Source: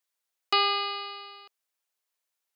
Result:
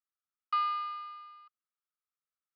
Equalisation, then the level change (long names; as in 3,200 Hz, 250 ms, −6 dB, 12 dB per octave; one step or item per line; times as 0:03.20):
four-pole ladder band-pass 1,300 Hz, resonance 85%
tilt shelving filter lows −8 dB, about 1,200 Hz
−6.5 dB